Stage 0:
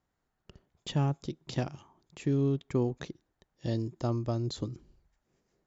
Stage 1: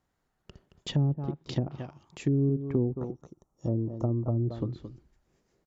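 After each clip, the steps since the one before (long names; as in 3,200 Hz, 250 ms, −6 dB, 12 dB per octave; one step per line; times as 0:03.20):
slap from a distant wall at 38 metres, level −11 dB
gain on a spectral selection 0:02.87–0:04.35, 1,400–5,400 Hz −18 dB
treble cut that deepens with the level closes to 390 Hz, closed at −26 dBFS
level +3 dB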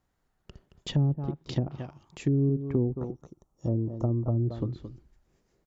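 low-shelf EQ 60 Hz +7.5 dB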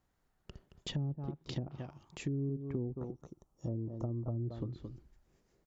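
downward compressor 2 to 1, threshold −38 dBFS, peak gain reduction 10 dB
level −2 dB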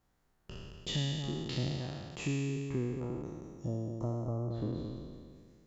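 peak hold with a decay on every bin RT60 1.99 s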